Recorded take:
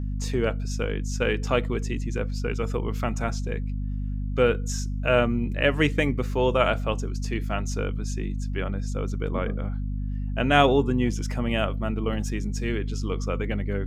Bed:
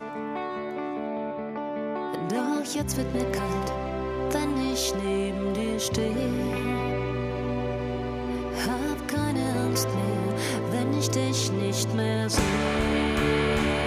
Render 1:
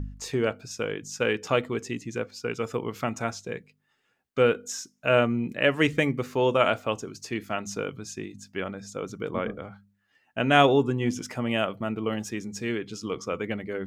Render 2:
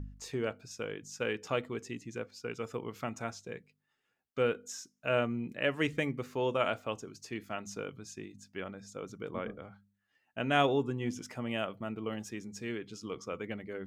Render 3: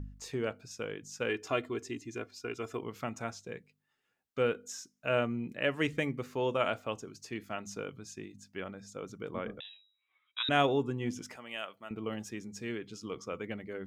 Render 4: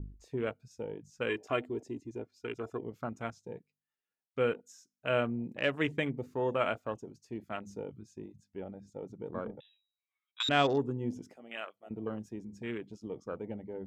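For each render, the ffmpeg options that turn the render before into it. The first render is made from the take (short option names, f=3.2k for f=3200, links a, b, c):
-af "bandreject=f=50:t=h:w=4,bandreject=f=100:t=h:w=4,bandreject=f=150:t=h:w=4,bandreject=f=200:t=h:w=4,bandreject=f=250:t=h:w=4"
-af "volume=-8.5dB"
-filter_complex "[0:a]asettb=1/sr,asplit=3[a][b][c];[a]atrim=end=1.294[d];[b]atrim=start=1.29:end=2.82,asetpts=PTS-STARTPTS,afade=t=in:d=0.004:c=qsin,afade=t=out:st=1.526:d=0.004:c=qsin,aecho=1:1:2.9:0.65,atrim=end_sample=67473[e];[c]atrim=start=2.816[f];[d][e]acrossfade=d=0.004:c1=hsin:c2=qsin[g];[g][f]acrossfade=d=0.004:c1=qsin:c2=hsin,asettb=1/sr,asplit=3[h][i][j];[h]atrim=end=9.604[k];[i]atrim=start=9.6:end=10.49,asetpts=PTS-STARTPTS,afade=t=in:d=0.004:c=qsin,afade=t=out:st=0.886:d=0.004:c=qsin,lowpass=f=3.4k:t=q:w=0.5098,lowpass=f=3.4k:t=q:w=0.6013,lowpass=f=3.4k:t=q:w=0.9,lowpass=f=3.4k:t=q:w=2.563,afreqshift=-4000[l];[j]atrim=start=10.486[m];[k][l]acrossfade=d=0.004:c1=hsin:c2=qsin[n];[n][m]acrossfade=d=0.004:c1=qsin:c2=hsin,asettb=1/sr,asplit=3[o][p][q];[o]atrim=end=11.364[r];[p]atrim=start=11.36:end=11.91,asetpts=PTS-STARTPTS,afade=t=in:d=0.004:c=qsin,afade=t=out:st=0.546:d=0.004:c=qsin,highpass=f=1.4k:p=1[s];[q]atrim=start=11.906[t];[r][s]acrossfade=d=0.004:c1=hsin:c2=qsin[u];[u][t]acrossfade=d=0.004:c1=qsin:c2=hsin"
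-af "afwtdn=0.00891,adynamicequalizer=threshold=0.00355:dfrequency=4200:dqfactor=0.7:tfrequency=4200:tqfactor=0.7:attack=5:release=100:ratio=0.375:range=3:mode=boostabove:tftype=highshelf"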